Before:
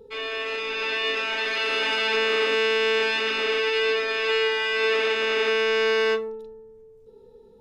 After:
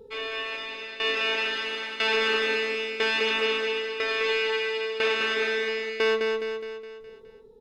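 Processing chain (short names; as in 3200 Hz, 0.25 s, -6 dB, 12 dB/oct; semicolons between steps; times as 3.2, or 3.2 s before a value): tremolo saw down 1 Hz, depth 90%; on a send: feedback echo 0.208 s, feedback 50%, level -5 dB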